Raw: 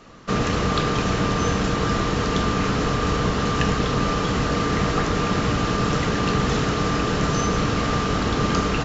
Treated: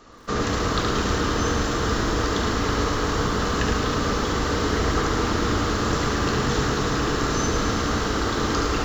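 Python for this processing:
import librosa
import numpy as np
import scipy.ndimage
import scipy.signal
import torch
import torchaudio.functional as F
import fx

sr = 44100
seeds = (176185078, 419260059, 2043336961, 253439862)

y = fx.graphic_eq_15(x, sr, hz=(160, 630, 2500), db=(-12, -4, -7))
y = y + 10.0 ** (-5.0 / 20.0) * np.pad(y, (int(71 * sr / 1000.0), 0))[:len(y)]
y = fx.echo_crushed(y, sr, ms=108, feedback_pct=80, bits=8, wet_db=-8.5)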